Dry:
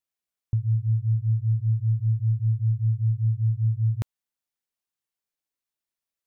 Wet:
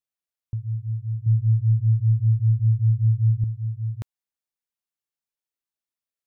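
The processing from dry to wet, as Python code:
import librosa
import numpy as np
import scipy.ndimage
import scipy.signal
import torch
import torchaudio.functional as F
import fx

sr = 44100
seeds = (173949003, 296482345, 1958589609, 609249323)

y = fx.peak_eq(x, sr, hz=130.0, db=9.5, octaves=1.4, at=(1.26, 3.44))
y = y * 10.0 ** (-4.5 / 20.0)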